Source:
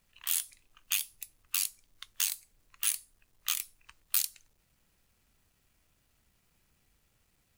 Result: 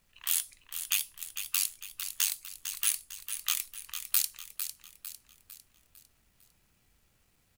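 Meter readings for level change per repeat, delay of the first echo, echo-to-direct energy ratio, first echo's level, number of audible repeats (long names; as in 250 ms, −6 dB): −7.0 dB, 452 ms, −8.0 dB, −9.0 dB, 4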